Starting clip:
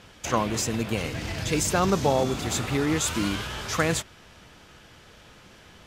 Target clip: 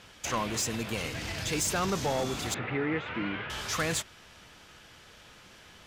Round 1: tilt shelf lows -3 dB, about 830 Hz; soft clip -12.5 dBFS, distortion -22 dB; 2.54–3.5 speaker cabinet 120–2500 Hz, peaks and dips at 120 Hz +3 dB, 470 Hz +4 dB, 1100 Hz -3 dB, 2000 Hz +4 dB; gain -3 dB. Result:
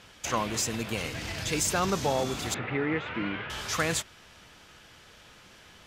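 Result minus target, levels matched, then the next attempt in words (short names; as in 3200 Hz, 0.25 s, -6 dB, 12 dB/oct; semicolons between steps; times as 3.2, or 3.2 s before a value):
soft clip: distortion -9 dB
tilt shelf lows -3 dB, about 830 Hz; soft clip -20 dBFS, distortion -13 dB; 2.54–3.5 speaker cabinet 120–2500 Hz, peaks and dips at 120 Hz +3 dB, 470 Hz +4 dB, 1100 Hz -3 dB, 2000 Hz +4 dB; gain -3 dB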